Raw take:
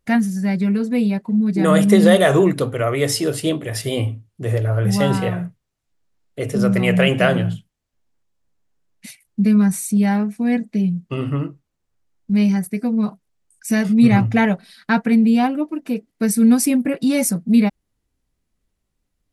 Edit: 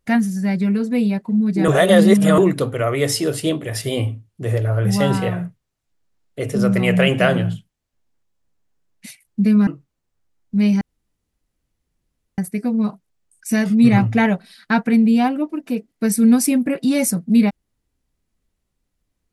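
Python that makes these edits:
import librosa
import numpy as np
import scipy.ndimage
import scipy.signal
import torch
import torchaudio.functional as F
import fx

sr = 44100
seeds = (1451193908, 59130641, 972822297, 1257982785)

y = fx.edit(x, sr, fx.reverse_span(start_s=1.68, length_s=0.7),
    fx.cut(start_s=9.67, length_s=1.76),
    fx.insert_room_tone(at_s=12.57, length_s=1.57), tone=tone)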